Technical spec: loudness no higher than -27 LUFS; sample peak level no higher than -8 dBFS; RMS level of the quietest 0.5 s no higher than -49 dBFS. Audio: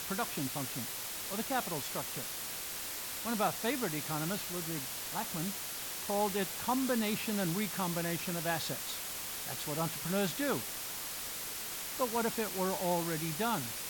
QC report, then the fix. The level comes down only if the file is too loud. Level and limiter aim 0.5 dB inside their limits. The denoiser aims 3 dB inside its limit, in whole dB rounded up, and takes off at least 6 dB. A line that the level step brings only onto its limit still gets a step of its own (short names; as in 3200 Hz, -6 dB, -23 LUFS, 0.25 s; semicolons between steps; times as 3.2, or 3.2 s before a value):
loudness -34.5 LUFS: OK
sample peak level -19.5 dBFS: OK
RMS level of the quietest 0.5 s -41 dBFS: fail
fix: denoiser 11 dB, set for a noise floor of -41 dBFS